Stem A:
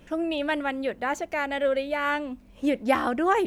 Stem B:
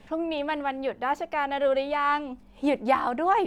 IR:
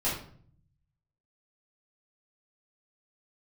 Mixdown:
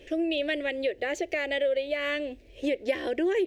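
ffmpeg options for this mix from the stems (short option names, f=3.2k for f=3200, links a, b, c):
-filter_complex "[0:a]firequalizer=gain_entry='entry(110,0);entry(160,-19);entry(360,10);entry(560,6);entry(1100,-22);entry(1800,5);entry(3200,7);entry(10000,-4)':delay=0.05:min_phase=1,volume=-0.5dB[a];[1:a]adelay=1,volume=-16.5dB[b];[a][b]amix=inputs=2:normalize=0,acompressor=threshold=-26dB:ratio=3"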